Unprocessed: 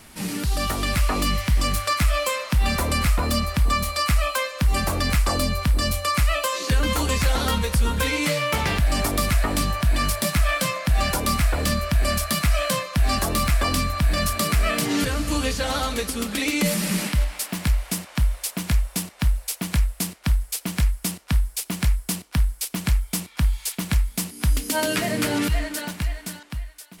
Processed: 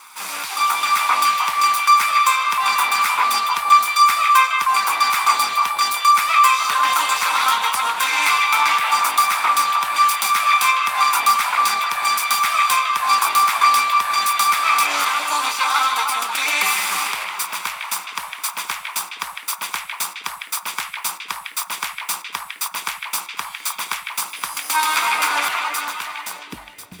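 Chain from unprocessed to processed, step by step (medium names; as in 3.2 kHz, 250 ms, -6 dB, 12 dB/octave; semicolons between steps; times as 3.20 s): comb filter that takes the minimum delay 0.85 ms; high-pass sweep 1 kHz -> 70 Hz, 26.21–26.95 s; repeats whose band climbs or falls 155 ms, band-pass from 2.5 kHz, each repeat -1.4 oct, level 0 dB; trim +5 dB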